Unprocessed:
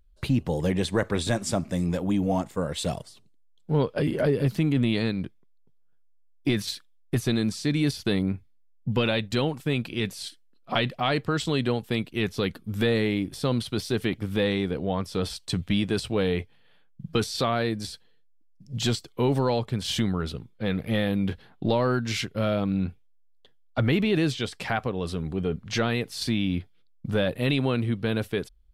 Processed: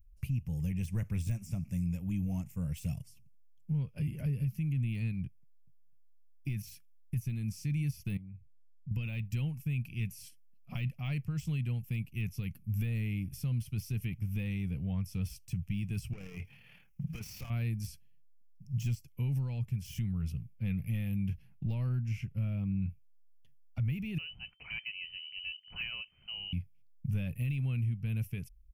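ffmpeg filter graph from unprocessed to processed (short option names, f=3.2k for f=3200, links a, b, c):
-filter_complex "[0:a]asettb=1/sr,asplit=3[a][b][c];[a]atrim=end=8.174[d];[b]atrim=start=8.17:end=8.91,asetpts=PTS-STARTPTS,afade=t=in:d=0.004:c=qsin,afade=t=out:st=0.736:d=0.004:c=qsin,highshelf=f=4.5k:g=-12,acompressor=threshold=-45dB:ratio=2.5:attack=3.2:release=140:knee=1:detection=peak[e];[c]atrim=start=8.906[f];[d][e]acrossfade=d=0.004:c1=hsin:c2=qsin[g];[g][f]acrossfade=d=0.004:c1=qsin:c2=hsin,asettb=1/sr,asplit=3[h][i][j];[h]atrim=end=16.134[k];[i]atrim=start=16.13:end=17.5,asetpts=PTS-STARTPTS,afade=t=in:d=0.004:c=qsin,afade=t=out:st=1.366:d=0.004:c=qsin,acompressor=threshold=-37dB:ratio=8:attack=3.2:release=140:knee=1:detection=peak,asplit=2[l][m];[m]highpass=f=720:p=1,volume=33dB,asoftclip=type=tanh:threshold=-19.5dB[n];[l][n]amix=inputs=2:normalize=0,lowpass=f=1.8k:p=1,volume=-6dB,tremolo=f=37:d=0.4[o];[j]atrim=start=17.496[p];[k][o]acrossfade=d=0.004:c1=hsin:c2=qsin[q];[q][p]acrossfade=d=0.004:c1=qsin:c2=hsin,asettb=1/sr,asplit=3[r][s][t];[r]atrim=end=21.894[u];[s]atrim=start=21.89:end=22.82,asetpts=PTS-STARTPTS,afade=t=in:d=0.004:c=qsin,afade=t=out:st=0.926:d=0.004:c=qsin,acrossover=split=2600[v][w];[w]acompressor=threshold=-38dB:ratio=4:attack=1:release=60[x];[v][x]amix=inputs=2:normalize=0,highshelf=f=3k:g=-8.5[y];[t]atrim=start=22.816[z];[u][y]acrossfade=d=0.004:c1=hsin:c2=qsin[aa];[aa][z]acrossfade=d=0.004:c1=qsin:c2=hsin,asettb=1/sr,asplit=3[ab][ac][ad];[ab]atrim=end=24.184[ae];[ac]atrim=start=24.18:end=26.53,asetpts=PTS-STARTPTS,afade=t=in:d=0.004:c=qsin,afade=t=out:st=2.346:d=0.004:c=qsin,equalizer=f=310:w=1.6:g=-9.5,aeval=exprs='(mod(7.5*val(0)+1,2)-1)/7.5':c=same,lowpass=f=2.6k:t=q:w=0.5098,lowpass=f=2.6k:t=q:w=0.6013,lowpass=f=2.6k:t=q:w=0.9,lowpass=f=2.6k:t=q:w=2.563,afreqshift=-3100[af];[ad]atrim=start=26.526[ag];[ae][af]acrossfade=d=0.004:c1=hsin:c2=qsin[ah];[ah][ag]acrossfade=d=0.004:c1=qsin:c2=hsin,deesser=0.75,firequalizer=gain_entry='entry(140,0);entry(280,-20);entry(400,-26);entry(1600,-24);entry(2500,-7);entry(3800,-29);entry(5500,-8);entry(8100,-12);entry(12000,1)':delay=0.05:min_phase=1,alimiter=level_in=3dB:limit=-24dB:level=0:latency=1:release=455,volume=-3dB,volume=1.5dB"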